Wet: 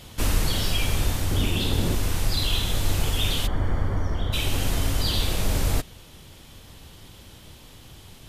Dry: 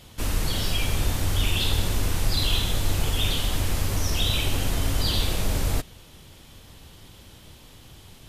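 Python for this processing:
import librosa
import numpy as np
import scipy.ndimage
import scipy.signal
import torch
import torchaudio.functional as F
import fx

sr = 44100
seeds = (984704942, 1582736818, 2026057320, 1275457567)

y = fx.peak_eq(x, sr, hz=250.0, db=10.0, octaves=2.3, at=(1.31, 1.95))
y = fx.rider(y, sr, range_db=10, speed_s=0.5)
y = fx.savgol(y, sr, points=41, at=(3.46, 4.32), fade=0.02)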